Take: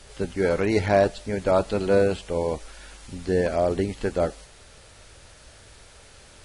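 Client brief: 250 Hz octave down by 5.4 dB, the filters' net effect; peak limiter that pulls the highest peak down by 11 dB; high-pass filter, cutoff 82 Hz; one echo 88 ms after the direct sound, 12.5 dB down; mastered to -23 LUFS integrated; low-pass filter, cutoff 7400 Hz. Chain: HPF 82 Hz; LPF 7400 Hz; bell 250 Hz -8 dB; limiter -20.5 dBFS; echo 88 ms -12.5 dB; gain +8 dB

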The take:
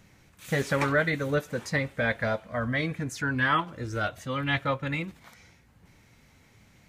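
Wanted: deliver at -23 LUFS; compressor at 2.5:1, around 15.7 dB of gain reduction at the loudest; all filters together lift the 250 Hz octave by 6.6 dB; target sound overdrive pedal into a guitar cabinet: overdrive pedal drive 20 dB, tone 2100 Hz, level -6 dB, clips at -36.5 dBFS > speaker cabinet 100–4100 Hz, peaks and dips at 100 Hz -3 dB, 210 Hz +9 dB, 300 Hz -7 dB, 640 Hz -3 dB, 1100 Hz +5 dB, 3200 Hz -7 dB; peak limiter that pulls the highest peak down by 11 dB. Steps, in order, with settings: bell 250 Hz +8 dB; compressor 2.5:1, threshold -44 dBFS; limiter -36.5 dBFS; overdrive pedal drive 20 dB, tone 2100 Hz, level -6 dB, clips at -36.5 dBFS; speaker cabinet 100–4100 Hz, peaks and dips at 100 Hz -3 dB, 210 Hz +9 dB, 300 Hz -7 dB, 640 Hz -3 dB, 1100 Hz +5 dB, 3200 Hz -7 dB; gain +22 dB

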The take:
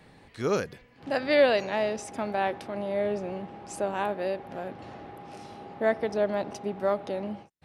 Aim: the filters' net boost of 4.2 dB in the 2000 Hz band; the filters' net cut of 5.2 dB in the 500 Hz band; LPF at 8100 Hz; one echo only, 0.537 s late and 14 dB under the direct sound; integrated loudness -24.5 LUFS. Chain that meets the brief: LPF 8100 Hz; bell 500 Hz -7 dB; bell 2000 Hz +5.5 dB; echo 0.537 s -14 dB; gain +6.5 dB

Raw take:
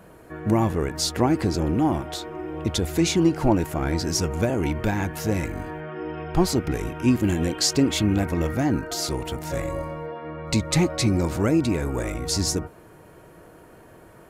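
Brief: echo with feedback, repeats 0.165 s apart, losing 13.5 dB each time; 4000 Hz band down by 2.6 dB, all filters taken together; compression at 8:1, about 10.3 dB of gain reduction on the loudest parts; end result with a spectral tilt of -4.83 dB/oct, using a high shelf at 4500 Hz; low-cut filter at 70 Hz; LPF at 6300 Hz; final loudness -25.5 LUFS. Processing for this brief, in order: HPF 70 Hz; LPF 6300 Hz; bell 4000 Hz -6.5 dB; high shelf 4500 Hz +7 dB; compressor 8:1, threshold -25 dBFS; feedback echo 0.165 s, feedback 21%, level -13.5 dB; gain +5 dB

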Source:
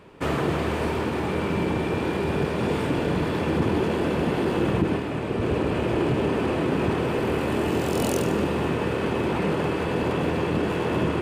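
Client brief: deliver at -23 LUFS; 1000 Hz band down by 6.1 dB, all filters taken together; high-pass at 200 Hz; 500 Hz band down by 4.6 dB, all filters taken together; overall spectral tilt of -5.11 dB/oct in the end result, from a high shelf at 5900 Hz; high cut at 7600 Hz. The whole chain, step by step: HPF 200 Hz; LPF 7600 Hz; bell 500 Hz -4.5 dB; bell 1000 Hz -6.5 dB; high shelf 5900 Hz +8 dB; gain +5.5 dB

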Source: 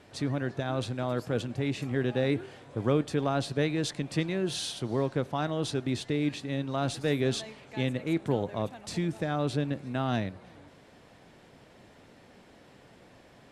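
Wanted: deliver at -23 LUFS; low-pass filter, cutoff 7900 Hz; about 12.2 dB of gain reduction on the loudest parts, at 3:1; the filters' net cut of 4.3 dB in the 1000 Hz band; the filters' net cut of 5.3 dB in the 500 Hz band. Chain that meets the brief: LPF 7900 Hz; bell 500 Hz -6 dB; bell 1000 Hz -3.5 dB; compressor 3:1, threshold -42 dBFS; gain +20.5 dB

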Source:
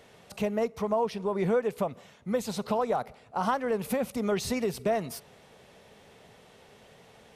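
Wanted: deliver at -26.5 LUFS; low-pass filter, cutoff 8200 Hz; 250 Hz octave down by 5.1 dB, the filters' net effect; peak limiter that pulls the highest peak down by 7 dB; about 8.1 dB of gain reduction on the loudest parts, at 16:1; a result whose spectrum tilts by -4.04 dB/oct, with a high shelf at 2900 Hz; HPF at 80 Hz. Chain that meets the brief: HPF 80 Hz; LPF 8200 Hz; bell 250 Hz -6.5 dB; high shelf 2900 Hz +3.5 dB; compressor 16:1, threshold -31 dBFS; gain +12.5 dB; limiter -16 dBFS

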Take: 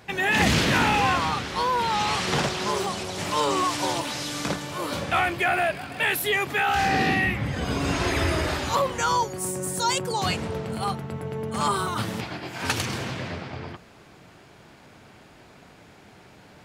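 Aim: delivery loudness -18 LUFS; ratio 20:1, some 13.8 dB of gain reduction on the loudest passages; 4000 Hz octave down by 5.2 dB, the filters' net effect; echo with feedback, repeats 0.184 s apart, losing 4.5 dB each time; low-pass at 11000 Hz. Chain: LPF 11000 Hz; bell 4000 Hz -7 dB; compressor 20:1, threshold -31 dBFS; feedback echo 0.184 s, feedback 60%, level -4.5 dB; gain +15.5 dB

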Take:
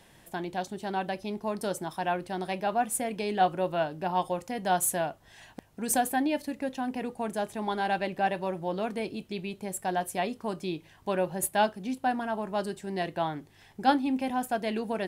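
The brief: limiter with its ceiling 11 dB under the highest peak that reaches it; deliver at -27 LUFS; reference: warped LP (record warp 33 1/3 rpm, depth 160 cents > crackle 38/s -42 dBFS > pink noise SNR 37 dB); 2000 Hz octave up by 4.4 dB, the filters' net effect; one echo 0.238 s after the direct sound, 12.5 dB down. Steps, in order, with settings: bell 2000 Hz +6 dB; limiter -19 dBFS; echo 0.238 s -12.5 dB; record warp 33 1/3 rpm, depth 160 cents; crackle 38/s -42 dBFS; pink noise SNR 37 dB; gain +4 dB

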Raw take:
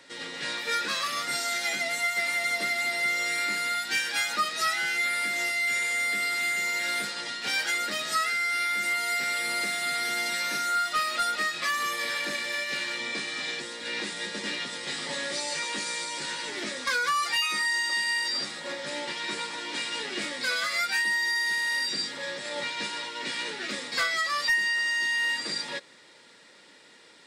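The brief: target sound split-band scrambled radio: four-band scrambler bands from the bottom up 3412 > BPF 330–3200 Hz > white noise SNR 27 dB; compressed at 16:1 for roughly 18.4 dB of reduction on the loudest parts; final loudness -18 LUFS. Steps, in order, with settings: compressor 16:1, threshold -41 dBFS; four-band scrambler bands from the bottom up 3412; BPF 330–3200 Hz; white noise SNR 27 dB; gain +29 dB

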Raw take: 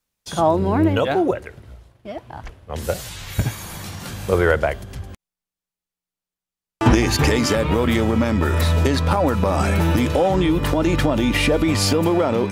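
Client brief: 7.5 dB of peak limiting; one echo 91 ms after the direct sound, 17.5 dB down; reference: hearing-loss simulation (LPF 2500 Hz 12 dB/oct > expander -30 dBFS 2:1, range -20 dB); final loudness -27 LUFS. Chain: limiter -11 dBFS; LPF 2500 Hz 12 dB/oct; echo 91 ms -17.5 dB; expander -30 dBFS 2:1, range -20 dB; gain -5.5 dB

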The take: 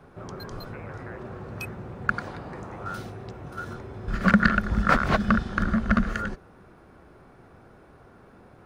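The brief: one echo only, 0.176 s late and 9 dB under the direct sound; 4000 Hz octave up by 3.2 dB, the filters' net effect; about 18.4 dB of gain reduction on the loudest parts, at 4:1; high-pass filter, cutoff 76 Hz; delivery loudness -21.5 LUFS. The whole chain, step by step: HPF 76 Hz; bell 4000 Hz +4 dB; compressor 4:1, threshold -37 dBFS; echo 0.176 s -9 dB; gain +18 dB

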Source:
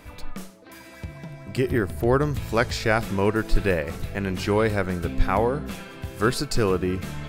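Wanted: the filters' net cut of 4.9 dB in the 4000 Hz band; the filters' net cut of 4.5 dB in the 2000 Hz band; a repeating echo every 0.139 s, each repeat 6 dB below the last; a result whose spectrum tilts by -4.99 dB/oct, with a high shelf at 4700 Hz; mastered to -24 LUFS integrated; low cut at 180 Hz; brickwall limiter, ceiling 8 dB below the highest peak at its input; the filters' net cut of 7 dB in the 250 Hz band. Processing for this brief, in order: HPF 180 Hz; bell 250 Hz -8.5 dB; bell 2000 Hz -5 dB; bell 4000 Hz -3 dB; high shelf 4700 Hz -3.5 dB; limiter -17.5 dBFS; feedback echo 0.139 s, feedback 50%, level -6 dB; gain +6 dB

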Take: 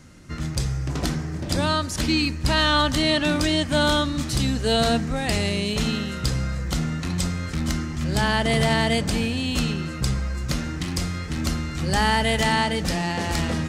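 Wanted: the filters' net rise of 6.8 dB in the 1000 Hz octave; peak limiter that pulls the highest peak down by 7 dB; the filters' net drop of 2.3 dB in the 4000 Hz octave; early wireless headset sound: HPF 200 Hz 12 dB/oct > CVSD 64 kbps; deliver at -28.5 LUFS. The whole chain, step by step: bell 1000 Hz +8.5 dB; bell 4000 Hz -3.5 dB; limiter -12 dBFS; HPF 200 Hz 12 dB/oct; CVSD 64 kbps; gain -3.5 dB

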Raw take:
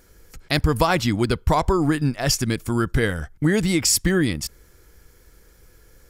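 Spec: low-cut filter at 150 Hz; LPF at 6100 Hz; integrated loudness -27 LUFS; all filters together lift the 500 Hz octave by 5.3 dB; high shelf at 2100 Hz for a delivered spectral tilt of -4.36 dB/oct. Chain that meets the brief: HPF 150 Hz; LPF 6100 Hz; bell 500 Hz +7 dB; high shelf 2100 Hz +3.5 dB; gain -7.5 dB

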